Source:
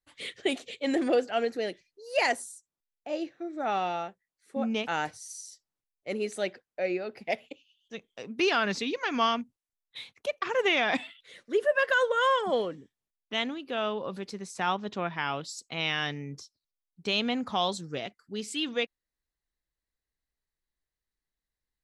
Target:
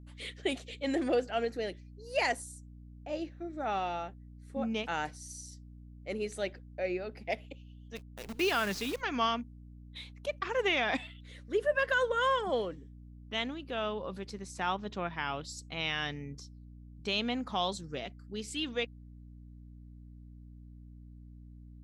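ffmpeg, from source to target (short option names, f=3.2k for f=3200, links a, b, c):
-filter_complex "[0:a]asplit=3[a][b][c];[a]afade=t=out:st=7.95:d=0.02[d];[b]acrusher=bits=7:dc=4:mix=0:aa=0.000001,afade=t=in:st=7.95:d=0.02,afade=t=out:st=9:d=0.02[e];[c]afade=t=in:st=9:d=0.02[f];[d][e][f]amix=inputs=3:normalize=0,aeval=exprs='val(0)+0.00562*(sin(2*PI*60*n/s)+sin(2*PI*2*60*n/s)/2+sin(2*PI*3*60*n/s)/3+sin(2*PI*4*60*n/s)/4+sin(2*PI*5*60*n/s)/5)':c=same,volume=-4dB"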